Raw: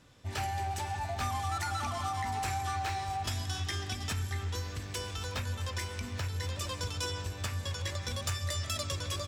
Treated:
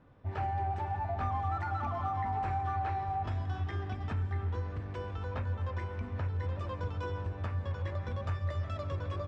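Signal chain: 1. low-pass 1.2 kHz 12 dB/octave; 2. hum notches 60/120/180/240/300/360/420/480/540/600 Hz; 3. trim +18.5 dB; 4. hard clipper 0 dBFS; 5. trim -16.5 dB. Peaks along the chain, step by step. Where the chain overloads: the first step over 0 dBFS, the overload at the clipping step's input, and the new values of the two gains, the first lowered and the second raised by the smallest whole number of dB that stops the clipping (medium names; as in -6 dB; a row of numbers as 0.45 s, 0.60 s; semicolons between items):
-23.5 dBFS, -24.0 dBFS, -5.5 dBFS, -5.5 dBFS, -22.0 dBFS; nothing clips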